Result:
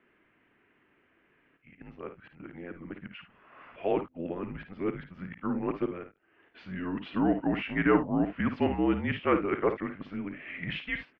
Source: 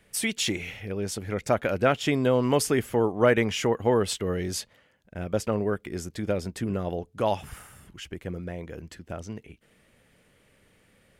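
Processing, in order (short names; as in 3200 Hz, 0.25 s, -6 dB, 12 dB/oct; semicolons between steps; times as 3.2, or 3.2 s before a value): whole clip reversed; mistuned SSB -180 Hz 340–2900 Hz; early reflections 54 ms -9.5 dB, 74 ms -16.5 dB; gain -2.5 dB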